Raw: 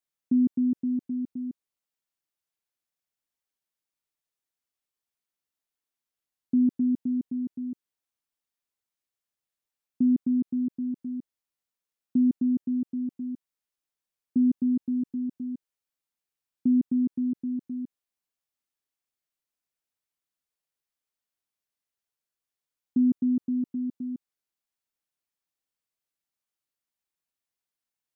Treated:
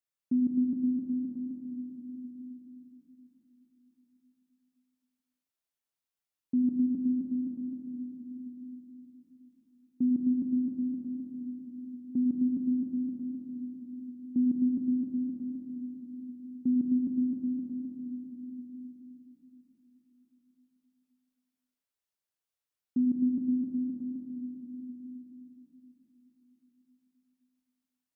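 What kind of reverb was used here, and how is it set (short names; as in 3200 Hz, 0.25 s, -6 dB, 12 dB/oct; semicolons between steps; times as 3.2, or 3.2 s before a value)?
plate-style reverb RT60 4.7 s, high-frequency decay 0.9×, DRR -0.5 dB; gain -5.5 dB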